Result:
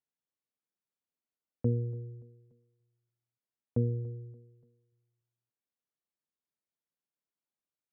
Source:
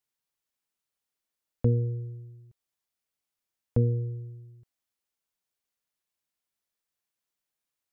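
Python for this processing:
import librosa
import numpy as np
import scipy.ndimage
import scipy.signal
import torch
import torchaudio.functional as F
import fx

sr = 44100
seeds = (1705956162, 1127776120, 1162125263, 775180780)

y = scipy.signal.sosfilt(scipy.signal.butter(2, 180.0, 'highpass', fs=sr, output='sos'), x)
y = fx.tilt_eq(y, sr, slope=-3.5)
y = fx.echo_feedback(y, sr, ms=288, feedback_pct=38, wet_db=-21.5)
y = y * 10.0 ** (-8.5 / 20.0)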